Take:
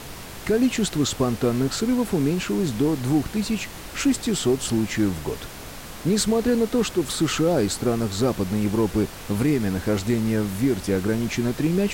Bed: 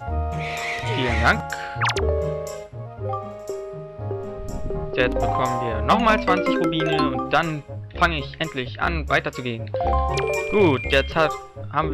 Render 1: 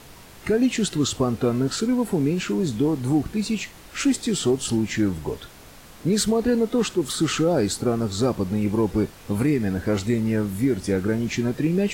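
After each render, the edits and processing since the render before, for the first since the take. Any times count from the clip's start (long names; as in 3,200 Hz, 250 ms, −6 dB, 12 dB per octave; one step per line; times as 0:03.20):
noise reduction from a noise print 8 dB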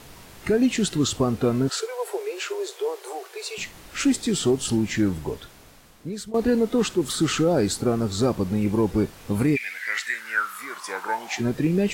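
0:01.69–0:03.58: Butterworth high-pass 380 Hz 96 dB per octave
0:05.13–0:06.34: fade out, to −18.5 dB
0:09.55–0:11.39: high-pass with resonance 2,400 Hz → 750 Hz, resonance Q 15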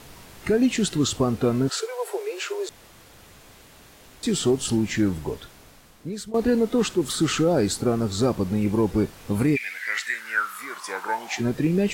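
0:02.69–0:04.23: fill with room tone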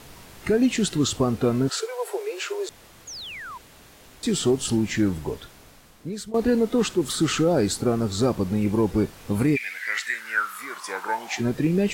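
0:03.07–0:03.58: sound drawn into the spectrogram fall 920–7,000 Hz −37 dBFS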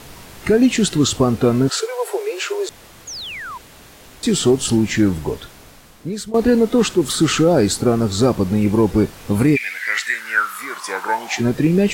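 level +6.5 dB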